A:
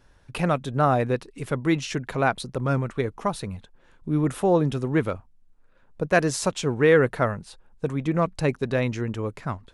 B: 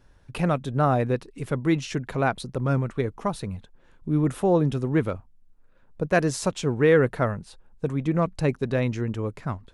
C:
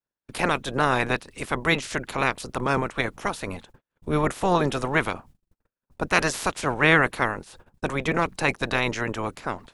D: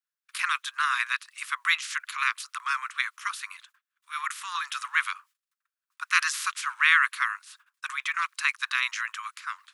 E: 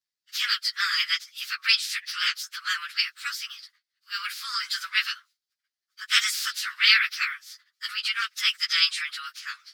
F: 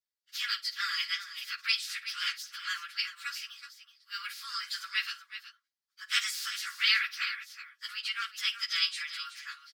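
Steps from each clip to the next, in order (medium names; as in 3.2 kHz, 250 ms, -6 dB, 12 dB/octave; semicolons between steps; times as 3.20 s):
bass shelf 460 Hz +4.5 dB; trim -3 dB
spectral peaks clipped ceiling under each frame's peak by 24 dB; gate -47 dBFS, range -41 dB
steep high-pass 1.1 kHz 72 dB/octave
frequency axis rescaled in octaves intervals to 110%; peaking EQ 4.7 kHz +14.5 dB 1 oct; trim +1 dB
comb 3.6 ms, depth 36%; on a send: multi-tap echo 53/374 ms -17.5/-12 dB; on the sum: trim -8 dB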